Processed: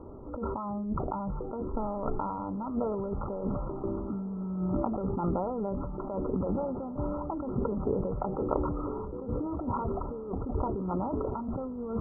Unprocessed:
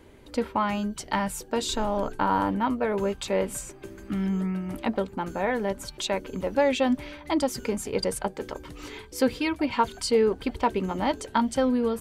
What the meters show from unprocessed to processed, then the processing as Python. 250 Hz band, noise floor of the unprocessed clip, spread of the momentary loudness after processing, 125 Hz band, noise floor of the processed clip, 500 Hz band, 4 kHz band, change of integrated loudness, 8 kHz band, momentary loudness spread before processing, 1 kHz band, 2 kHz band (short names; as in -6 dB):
-4.5 dB, -48 dBFS, 5 LU, +1.5 dB, -38 dBFS, -6.5 dB, under -40 dB, -6.0 dB, under -40 dB, 8 LU, -7.5 dB, under -25 dB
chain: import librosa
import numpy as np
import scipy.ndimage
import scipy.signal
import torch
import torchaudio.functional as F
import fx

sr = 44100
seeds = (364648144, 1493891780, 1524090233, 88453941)

y = fx.dynamic_eq(x, sr, hz=110.0, q=0.81, threshold_db=-39.0, ratio=4.0, max_db=4)
y = fx.over_compress(y, sr, threshold_db=-33.0, ratio=-1.0)
y = fx.brickwall_lowpass(y, sr, high_hz=1400.0)
y = fx.echo_diffused(y, sr, ms=1413, feedback_pct=41, wet_db=-15)
y = fx.sustainer(y, sr, db_per_s=26.0)